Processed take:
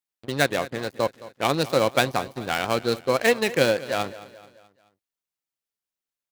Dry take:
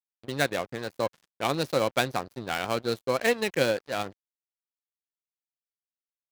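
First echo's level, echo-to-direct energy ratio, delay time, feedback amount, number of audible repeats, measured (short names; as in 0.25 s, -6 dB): -17.5 dB, -16.5 dB, 0.216 s, 48%, 3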